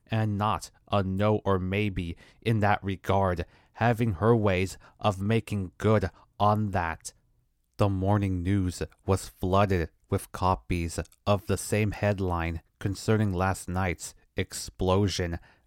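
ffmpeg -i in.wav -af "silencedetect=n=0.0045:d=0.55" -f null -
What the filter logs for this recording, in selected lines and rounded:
silence_start: 7.10
silence_end: 7.79 | silence_duration: 0.69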